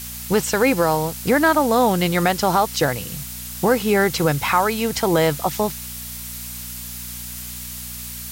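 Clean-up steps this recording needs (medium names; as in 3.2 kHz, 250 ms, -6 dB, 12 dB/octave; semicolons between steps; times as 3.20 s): de-hum 60.5 Hz, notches 4; noise print and reduce 30 dB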